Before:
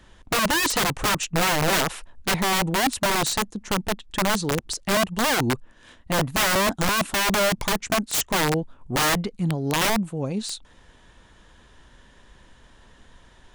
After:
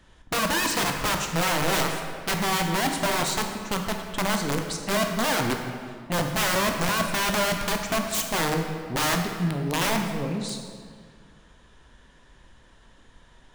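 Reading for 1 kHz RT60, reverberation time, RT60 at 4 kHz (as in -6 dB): 2.0 s, 2.0 s, 1.4 s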